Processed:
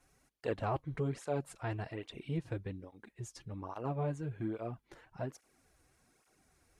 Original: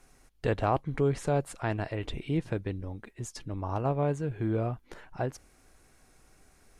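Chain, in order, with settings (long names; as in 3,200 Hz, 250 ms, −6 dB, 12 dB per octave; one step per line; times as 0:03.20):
through-zero flanger with one copy inverted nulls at 1.2 Hz, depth 5.3 ms
level −5 dB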